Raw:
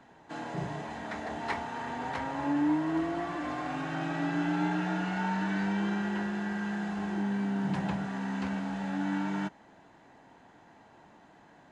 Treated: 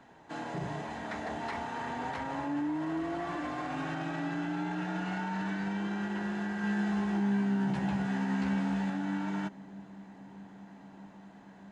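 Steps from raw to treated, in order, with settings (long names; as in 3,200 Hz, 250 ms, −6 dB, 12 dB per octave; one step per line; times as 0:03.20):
brickwall limiter −27 dBFS, peak gain reduction 8 dB
0:06.62–0:08.90: double-tracking delay 15 ms −3 dB
delay with a low-pass on its return 630 ms, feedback 81%, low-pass 540 Hz, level −21.5 dB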